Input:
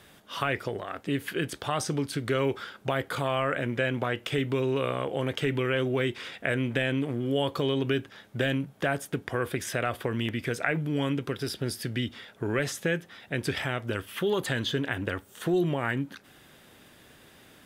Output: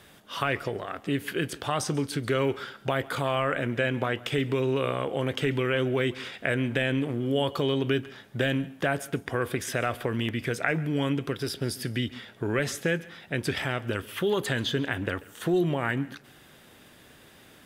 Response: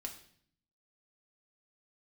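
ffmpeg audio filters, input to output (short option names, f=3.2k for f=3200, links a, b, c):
-filter_complex "[0:a]asplit=2[a][b];[1:a]atrim=start_sample=2205,adelay=138[c];[b][c]afir=irnorm=-1:irlink=0,volume=-17dB[d];[a][d]amix=inputs=2:normalize=0,volume=1dB"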